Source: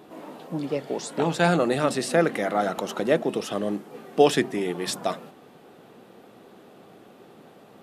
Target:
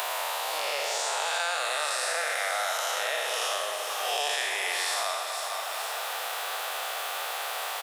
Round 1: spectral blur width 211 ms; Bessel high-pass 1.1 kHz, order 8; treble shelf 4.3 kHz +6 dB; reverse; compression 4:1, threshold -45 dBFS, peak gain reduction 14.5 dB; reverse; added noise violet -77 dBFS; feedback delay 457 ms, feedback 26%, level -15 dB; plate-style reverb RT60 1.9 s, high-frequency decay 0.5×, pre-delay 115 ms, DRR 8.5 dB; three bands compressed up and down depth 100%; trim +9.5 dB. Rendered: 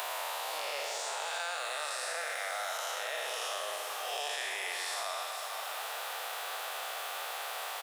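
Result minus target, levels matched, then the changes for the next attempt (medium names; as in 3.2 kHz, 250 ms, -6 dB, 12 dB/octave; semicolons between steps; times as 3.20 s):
compression: peak gain reduction +8 dB
change: compression 4:1, threshold -34 dBFS, peak gain reduction 6.5 dB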